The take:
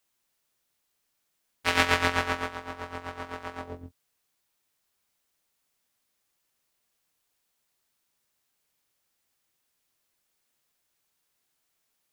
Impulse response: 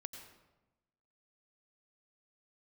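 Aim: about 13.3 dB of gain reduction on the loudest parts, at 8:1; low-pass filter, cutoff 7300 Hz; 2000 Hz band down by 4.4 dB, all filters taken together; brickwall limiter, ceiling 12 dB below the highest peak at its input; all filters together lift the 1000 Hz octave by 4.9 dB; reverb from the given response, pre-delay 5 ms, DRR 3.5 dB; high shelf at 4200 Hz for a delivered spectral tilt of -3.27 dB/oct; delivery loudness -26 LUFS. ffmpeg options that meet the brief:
-filter_complex "[0:a]lowpass=7.3k,equalizer=f=1k:t=o:g=8.5,equalizer=f=2k:t=o:g=-7.5,highshelf=f=4.2k:g=-8,acompressor=threshold=-30dB:ratio=8,alimiter=level_in=4dB:limit=-24dB:level=0:latency=1,volume=-4dB,asplit=2[a][b];[1:a]atrim=start_sample=2205,adelay=5[c];[b][c]afir=irnorm=-1:irlink=0,volume=0dB[d];[a][d]amix=inputs=2:normalize=0,volume=14dB"

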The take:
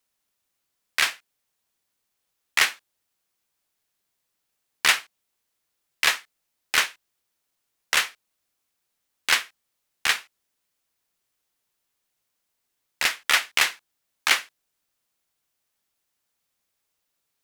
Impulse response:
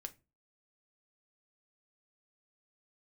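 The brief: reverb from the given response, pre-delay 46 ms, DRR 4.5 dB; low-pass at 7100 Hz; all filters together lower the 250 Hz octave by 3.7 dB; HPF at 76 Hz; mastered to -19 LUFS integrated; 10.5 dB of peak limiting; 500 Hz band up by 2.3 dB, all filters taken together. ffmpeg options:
-filter_complex "[0:a]highpass=76,lowpass=7.1k,equalizer=f=250:t=o:g=-7.5,equalizer=f=500:t=o:g=4.5,alimiter=limit=-14.5dB:level=0:latency=1,asplit=2[a][b];[1:a]atrim=start_sample=2205,adelay=46[c];[b][c]afir=irnorm=-1:irlink=0,volume=0dB[d];[a][d]amix=inputs=2:normalize=0,volume=10dB"

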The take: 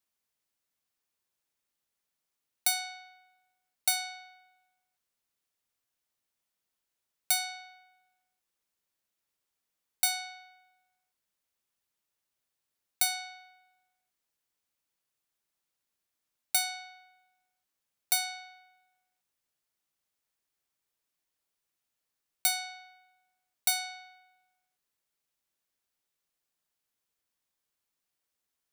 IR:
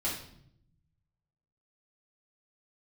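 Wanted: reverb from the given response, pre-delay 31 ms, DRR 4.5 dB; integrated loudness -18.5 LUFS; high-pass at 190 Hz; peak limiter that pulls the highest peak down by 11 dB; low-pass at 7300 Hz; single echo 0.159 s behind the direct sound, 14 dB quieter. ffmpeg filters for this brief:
-filter_complex "[0:a]highpass=190,lowpass=7.3k,alimiter=level_in=6dB:limit=-24dB:level=0:latency=1,volume=-6dB,aecho=1:1:159:0.2,asplit=2[a][b];[1:a]atrim=start_sample=2205,adelay=31[c];[b][c]afir=irnorm=-1:irlink=0,volume=-10dB[d];[a][d]amix=inputs=2:normalize=0,volume=22dB"

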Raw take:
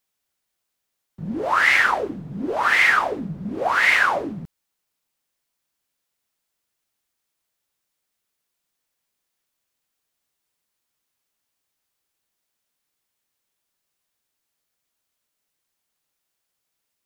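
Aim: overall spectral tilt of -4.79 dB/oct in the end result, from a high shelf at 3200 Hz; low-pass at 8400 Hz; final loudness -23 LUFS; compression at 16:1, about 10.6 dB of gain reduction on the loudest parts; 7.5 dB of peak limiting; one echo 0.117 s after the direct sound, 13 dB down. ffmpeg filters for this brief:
-af "lowpass=8.4k,highshelf=f=3.2k:g=-6.5,acompressor=threshold=-25dB:ratio=16,alimiter=level_in=0.5dB:limit=-24dB:level=0:latency=1,volume=-0.5dB,aecho=1:1:117:0.224,volume=9.5dB"

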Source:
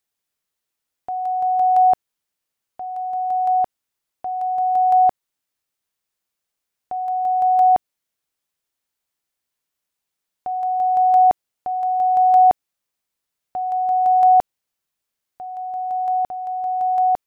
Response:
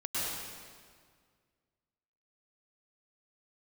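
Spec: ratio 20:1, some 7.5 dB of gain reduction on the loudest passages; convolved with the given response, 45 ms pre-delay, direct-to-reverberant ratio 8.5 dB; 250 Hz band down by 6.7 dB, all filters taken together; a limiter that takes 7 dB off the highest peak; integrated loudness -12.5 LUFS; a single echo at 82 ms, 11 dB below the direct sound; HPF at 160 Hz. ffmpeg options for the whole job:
-filter_complex "[0:a]highpass=160,equalizer=f=250:t=o:g=-8.5,acompressor=threshold=-19dB:ratio=20,alimiter=limit=-22dB:level=0:latency=1,aecho=1:1:82:0.282,asplit=2[a][b];[1:a]atrim=start_sample=2205,adelay=45[c];[b][c]afir=irnorm=-1:irlink=0,volume=-15dB[d];[a][d]amix=inputs=2:normalize=0,volume=17dB"

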